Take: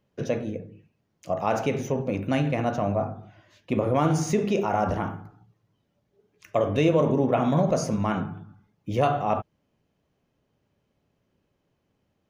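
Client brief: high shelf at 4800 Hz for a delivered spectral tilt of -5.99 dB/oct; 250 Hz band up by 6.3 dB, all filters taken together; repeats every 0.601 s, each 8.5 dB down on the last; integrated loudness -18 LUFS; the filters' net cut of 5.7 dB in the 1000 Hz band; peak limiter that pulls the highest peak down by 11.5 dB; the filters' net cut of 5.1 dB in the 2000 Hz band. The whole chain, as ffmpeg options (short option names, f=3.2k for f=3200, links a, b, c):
-af "equalizer=f=250:t=o:g=8.5,equalizer=f=1k:t=o:g=-9,equalizer=f=2k:t=o:g=-3.5,highshelf=f=4.8k:g=-3.5,alimiter=limit=-18dB:level=0:latency=1,aecho=1:1:601|1202|1803|2404:0.376|0.143|0.0543|0.0206,volume=10dB"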